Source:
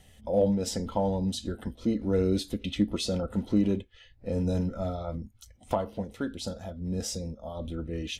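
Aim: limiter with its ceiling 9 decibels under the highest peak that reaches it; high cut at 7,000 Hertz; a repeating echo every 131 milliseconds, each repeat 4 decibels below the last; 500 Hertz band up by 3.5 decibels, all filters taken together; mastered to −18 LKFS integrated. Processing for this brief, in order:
low-pass filter 7,000 Hz
parametric band 500 Hz +4 dB
brickwall limiter −20 dBFS
repeating echo 131 ms, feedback 63%, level −4 dB
level +11.5 dB

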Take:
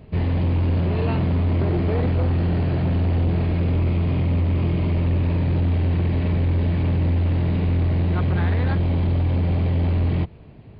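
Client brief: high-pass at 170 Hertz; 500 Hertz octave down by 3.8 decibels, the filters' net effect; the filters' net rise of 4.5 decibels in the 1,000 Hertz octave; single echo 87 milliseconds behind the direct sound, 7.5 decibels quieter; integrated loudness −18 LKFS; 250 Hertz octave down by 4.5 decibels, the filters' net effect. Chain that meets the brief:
high-pass filter 170 Hz
parametric band 250 Hz −3 dB
parametric band 500 Hz −6 dB
parametric band 1,000 Hz +8 dB
single-tap delay 87 ms −7.5 dB
level +10.5 dB

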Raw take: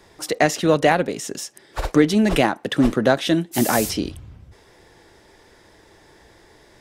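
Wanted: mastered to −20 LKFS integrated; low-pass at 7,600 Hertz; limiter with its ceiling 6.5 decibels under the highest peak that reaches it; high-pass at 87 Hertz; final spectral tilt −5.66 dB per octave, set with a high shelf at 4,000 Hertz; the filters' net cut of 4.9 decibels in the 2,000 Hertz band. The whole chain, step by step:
high-pass filter 87 Hz
low-pass filter 7,600 Hz
parametric band 2,000 Hz −5 dB
high-shelf EQ 4,000 Hz −5.5 dB
level +3 dB
brickwall limiter −7.5 dBFS

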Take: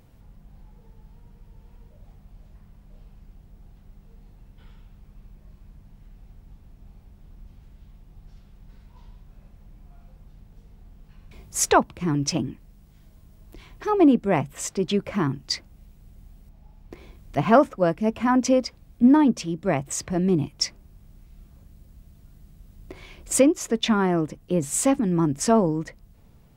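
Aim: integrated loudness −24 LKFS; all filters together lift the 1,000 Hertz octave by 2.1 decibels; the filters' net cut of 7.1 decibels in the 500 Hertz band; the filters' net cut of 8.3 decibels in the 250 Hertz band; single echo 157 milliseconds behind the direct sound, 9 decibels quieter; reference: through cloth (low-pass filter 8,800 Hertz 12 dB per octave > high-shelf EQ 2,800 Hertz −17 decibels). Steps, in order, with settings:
low-pass filter 8,800 Hz 12 dB per octave
parametric band 250 Hz −8 dB
parametric band 500 Hz −9 dB
parametric band 1,000 Hz +8.5 dB
high-shelf EQ 2,800 Hz −17 dB
single-tap delay 157 ms −9 dB
level +3 dB

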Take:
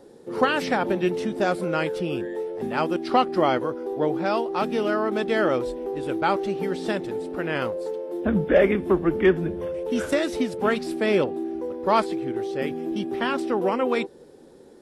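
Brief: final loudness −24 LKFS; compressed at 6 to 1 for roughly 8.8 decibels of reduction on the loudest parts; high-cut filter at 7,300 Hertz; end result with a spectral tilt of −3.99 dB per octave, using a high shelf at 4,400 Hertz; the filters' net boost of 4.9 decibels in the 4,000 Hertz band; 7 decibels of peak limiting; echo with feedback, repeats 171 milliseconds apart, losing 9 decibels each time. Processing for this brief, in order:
low-pass filter 7,300 Hz
parametric band 4,000 Hz +4 dB
high-shelf EQ 4,400 Hz +6 dB
downward compressor 6 to 1, threshold −22 dBFS
brickwall limiter −19 dBFS
repeating echo 171 ms, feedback 35%, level −9 dB
level +4.5 dB

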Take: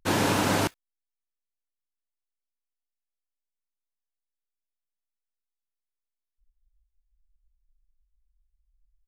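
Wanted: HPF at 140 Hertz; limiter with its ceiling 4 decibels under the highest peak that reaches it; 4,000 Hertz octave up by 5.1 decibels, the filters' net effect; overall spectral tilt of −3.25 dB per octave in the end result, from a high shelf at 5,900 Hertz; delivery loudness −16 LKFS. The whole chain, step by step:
high-pass filter 140 Hz
parametric band 4,000 Hz +8 dB
high-shelf EQ 5,900 Hz −4.5 dB
level +10.5 dB
brickwall limiter −5.5 dBFS

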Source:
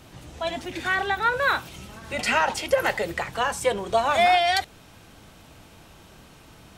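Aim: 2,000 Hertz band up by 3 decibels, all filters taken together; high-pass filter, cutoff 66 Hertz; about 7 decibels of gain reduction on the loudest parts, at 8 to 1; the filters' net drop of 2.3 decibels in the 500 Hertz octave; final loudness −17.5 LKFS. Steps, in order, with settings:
high-pass filter 66 Hz
parametric band 500 Hz −3.5 dB
parametric band 2,000 Hz +4 dB
downward compressor 8 to 1, threshold −22 dBFS
level +9.5 dB

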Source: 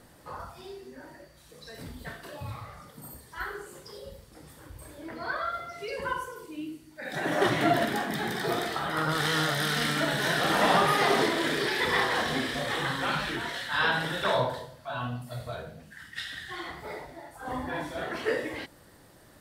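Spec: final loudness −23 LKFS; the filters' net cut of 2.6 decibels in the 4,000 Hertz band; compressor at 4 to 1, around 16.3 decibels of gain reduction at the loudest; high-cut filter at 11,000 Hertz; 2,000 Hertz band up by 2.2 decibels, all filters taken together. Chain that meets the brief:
low-pass filter 11,000 Hz
parametric band 2,000 Hz +3.5 dB
parametric band 4,000 Hz −4.5 dB
downward compressor 4 to 1, threshold −39 dBFS
level +18 dB

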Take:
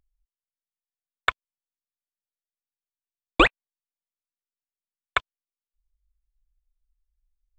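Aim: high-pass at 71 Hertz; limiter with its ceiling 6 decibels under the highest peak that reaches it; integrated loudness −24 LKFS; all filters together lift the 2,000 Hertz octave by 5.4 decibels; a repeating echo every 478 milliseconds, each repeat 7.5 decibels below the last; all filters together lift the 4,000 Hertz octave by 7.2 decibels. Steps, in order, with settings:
high-pass filter 71 Hz
parametric band 2,000 Hz +5 dB
parametric band 4,000 Hz +7.5 dB
brickwall limiter −3.5 dBFS
repeating echo 478 ms, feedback 42%, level −7.5 dB
level +1.5 dB

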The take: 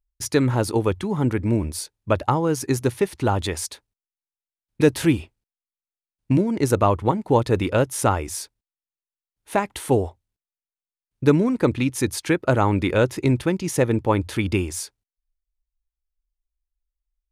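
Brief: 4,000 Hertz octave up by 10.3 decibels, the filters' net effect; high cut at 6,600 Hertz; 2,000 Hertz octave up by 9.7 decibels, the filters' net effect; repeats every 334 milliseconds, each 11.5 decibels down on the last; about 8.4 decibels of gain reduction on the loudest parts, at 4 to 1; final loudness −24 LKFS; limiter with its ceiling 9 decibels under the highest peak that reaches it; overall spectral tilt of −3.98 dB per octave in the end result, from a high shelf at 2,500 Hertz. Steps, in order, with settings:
low-pass filter 6,600 Hz
parametric band 2,000 Hz +8 dB
high-shelf EQ 2,500 Hz +7 dB
parametric band 4,000 Hz +5 dB
downward compressor 4 to 1, threshold −21 dBFS
brickwall limiter −16 dBFS
repeating echo 334 ms, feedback 27%, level −11.5 dB
level +3.5 dB

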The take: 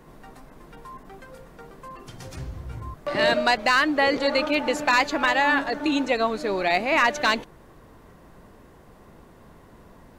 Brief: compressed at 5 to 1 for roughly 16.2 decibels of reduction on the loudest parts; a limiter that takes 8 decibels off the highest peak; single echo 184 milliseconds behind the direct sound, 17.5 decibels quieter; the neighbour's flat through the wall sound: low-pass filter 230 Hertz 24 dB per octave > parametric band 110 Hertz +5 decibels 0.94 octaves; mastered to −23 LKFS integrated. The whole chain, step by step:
downward compressor 5 to 1, threshold −35 dBFS
brickwall limiter −28.5 dBFS
low-pass filter 230 Hz 24 dB per octave
parametric band 110 Hz +5 dB 0.94 octaves
single-tap delay 184 ms −17.5 dB
level +24.5 dB

